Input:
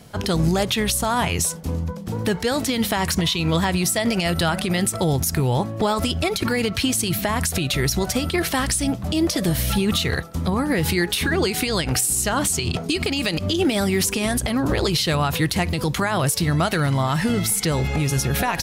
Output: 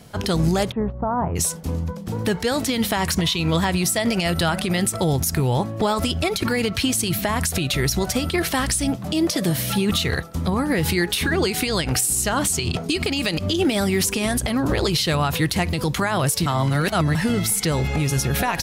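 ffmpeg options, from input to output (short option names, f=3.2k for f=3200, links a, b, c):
-filter_complex "[0:a]asplit=3[a][b][c];[a]afade=t=out:st=0.7:d=0.02[d];[b]lowpass=f=1.1k:w=0.5412,lowpass=f=1.1k:w=1.3066,afade=t=in:st=0.7:d=0.02,afade=t=out:st=1.35:d=0.02[e];[c]afade=t=in:st=1.35:d=0.02[f];[d][e][f]amix=inputs=3:normalize=0,asettb=1/sr,asplit=3[g][h][i];[g]atrim=end=8.964[j];[h]atrim=start=8.96:end=9.9,asetpts=PTS-STARTPTS,afade=t=in:d=0.004:c=qsin,afade=t=out:st=0.936:d=0.004:c=qsin,highpass=f=100:w=0.5412,highpass=f=100:w=1.3066[k];[i]atrim=start=9.896[l];[j][k]acrossfade=d=0.004:c1=hsin:c2=qsin[m];[m][l]acrossfade=d=0.004:c1=qsin:c2=hsin,asplit=3[n][o][p];[n]atrim=end=16.462[q];[o]atrim=start=16.458:end=17.152,asetpts=PTS-STARTPTS,areverse[r];[p]atrim=start=17.148[s];[q][r]acrossfade=d=0.004:c1=hsin:c2=hsin[t];[t][s]acrossfade=d=0.004:c1=hsin:c2=hsin"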